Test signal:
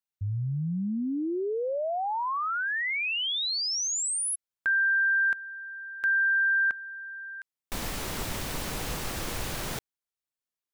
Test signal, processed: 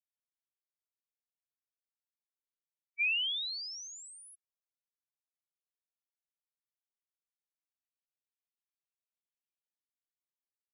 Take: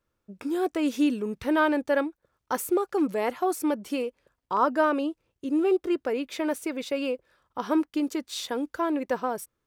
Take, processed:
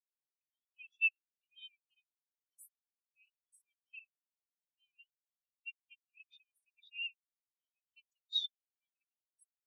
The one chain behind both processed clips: brick-wall FIR high-pass 2.3 kHz; spectral contrast expander 4:1

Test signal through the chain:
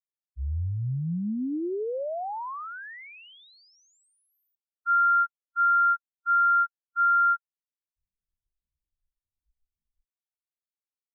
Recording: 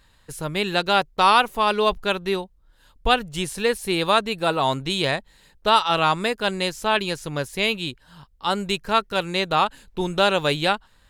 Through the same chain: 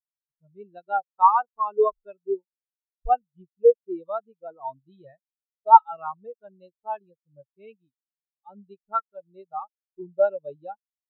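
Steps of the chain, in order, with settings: spectral contrast expander 4:1; trim +3 dB

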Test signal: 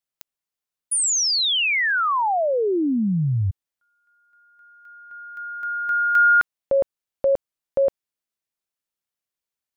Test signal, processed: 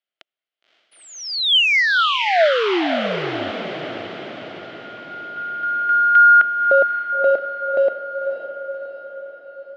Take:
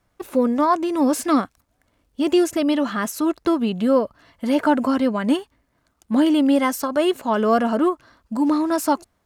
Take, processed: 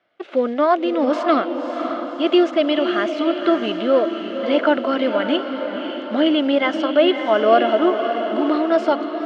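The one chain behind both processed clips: short-mantissa float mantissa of 4-bit; cabinet simulation 320–4200 Hz, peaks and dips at 350 Hz +4 dB, 650 Hz +9 dB, 970 Hz -7 dB, 1.4 kHz +5 dB, 2.1 kHz +5 dB, 3.1 kHz +8 dB; echo that smears into a reverb 559 ms, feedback 57%, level -7 dB

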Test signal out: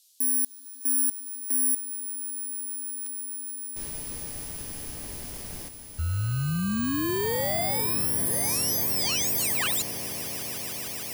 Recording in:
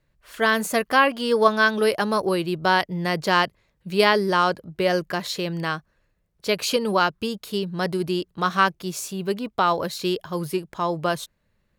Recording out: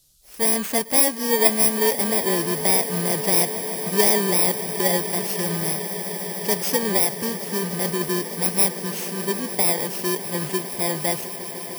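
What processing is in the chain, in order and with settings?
bit-reversed sample order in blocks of 32 samples; band noise 3.5–14 kHz -61 dBFS; echo with a slow build-up 151 ms, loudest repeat 8, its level -18 dB

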